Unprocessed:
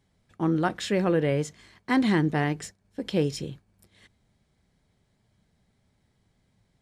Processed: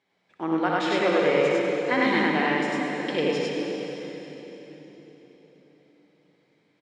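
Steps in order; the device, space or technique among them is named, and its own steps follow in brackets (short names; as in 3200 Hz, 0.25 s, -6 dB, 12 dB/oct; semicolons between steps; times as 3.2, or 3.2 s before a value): station announcement (BPF 380–4300 Hz; bell 2300 Hz +5.5 dB 0.34 oct; loudspeakers at several distances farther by 21 m -6 dB, 34 m 0 dB; reverb RT60 4.0 s, pre-delay 74 ms, DRR 0.5 dB)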